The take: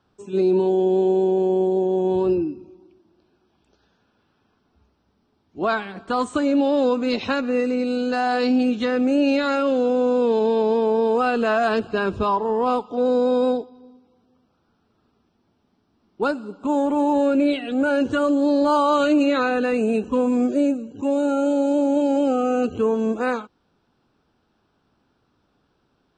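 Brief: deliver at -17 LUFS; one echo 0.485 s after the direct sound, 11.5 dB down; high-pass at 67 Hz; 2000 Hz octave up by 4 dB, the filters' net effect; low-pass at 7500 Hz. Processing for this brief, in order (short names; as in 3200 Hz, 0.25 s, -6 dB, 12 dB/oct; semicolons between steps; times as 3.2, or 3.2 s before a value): HPF 67 Hz; LPF 7500 Hz; bell 2000 Hz +6 dB; echo 0.485 s -11.5 dB; gain +3 dB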